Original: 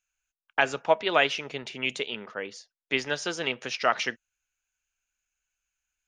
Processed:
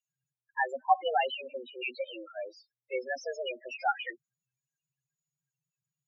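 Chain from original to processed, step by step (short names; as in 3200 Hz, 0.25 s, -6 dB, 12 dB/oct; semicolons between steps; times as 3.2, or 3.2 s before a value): frequency shift +120 Hz; loudest bins only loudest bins 4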